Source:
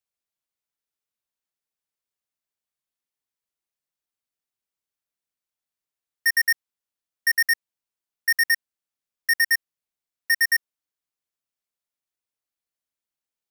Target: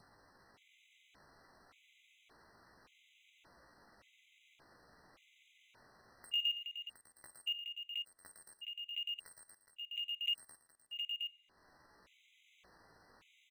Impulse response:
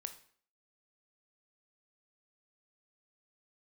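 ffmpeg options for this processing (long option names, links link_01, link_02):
-filter_complex "[0:a]lowpass=1600,adynamicequalizer=threshold=0.0112:dfrequency=1100:dqfactor=1.7:tfrequency=1100:tqfactor=1.7:attack=5:release=100:ratio=0.375:range=1.5:mode=cutabove:tftype=bell,acompressor=mode=upward:threshold=-37dB:ratio=2.5,alimiter=limit=-23.5dB:level=0:latency=1:release=14,acompressor=threshold=-33dB:ratio=6,acrusher=bits=4:mode=log:mix=0:aa=0.000001,asetrate=68011,aresample=44100,atempo=0.64842,aecho=1:1:55|73|115|418|715:0.119|0.119|0.237|0.282|0.501,asplit=2[link_01][link_02];[1:a]atrim=start_sample=2205,asetrate=27783,aresample=44100[link_03];[link_02][link_03]afir=irnorm=-1:irlink=0,volume=-7dB[link_04];[link_01][link_04]amix=inputs=2:normalize=0,afftfilt=real='re*gt(sin(2*PI*0.87*pts/sr)*(1-2*mod(floor(b*sr/1024/2000),2)),0)':imag='im*gt(sin(2*PI*0.87*pts/sr)*(1-2*mod(floor(b*sr/1024/2000),2)),0)':win_size=1024:overlap=0.75,volume=-2.5dB"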